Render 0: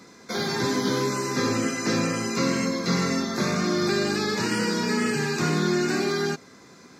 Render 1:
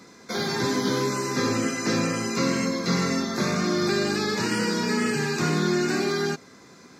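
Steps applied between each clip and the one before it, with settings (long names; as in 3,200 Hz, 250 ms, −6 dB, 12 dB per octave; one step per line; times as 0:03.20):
no processing that can be heard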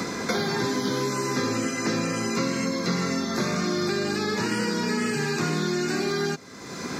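multiband upward and downward compressor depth 100%
level −2 dB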